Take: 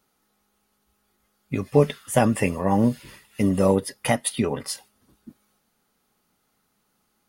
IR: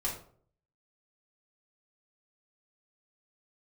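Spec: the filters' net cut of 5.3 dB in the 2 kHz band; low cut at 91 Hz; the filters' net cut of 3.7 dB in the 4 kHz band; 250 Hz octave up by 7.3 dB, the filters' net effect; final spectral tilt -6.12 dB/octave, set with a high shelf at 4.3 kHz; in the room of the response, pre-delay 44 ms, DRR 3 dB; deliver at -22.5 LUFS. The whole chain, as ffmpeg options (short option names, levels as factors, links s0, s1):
-filter_complex "[0:a]highpass=91,equalizer=f=250:t=o:g=9,equalizer=f=2000:t=o:g=-6,equalizer=f=4000:t=o:g=-5.5,highshelf=f=4300:g=4,asplit=2[s0][s1];[1:a]atrim=start_sample=2205,adelay=44[s2];[s1][s2]afir=irnorm=-1:irlink=0,volume=0.422[s3];[s0][s3]amix=inputs=2:normalize=0,volume=0.531"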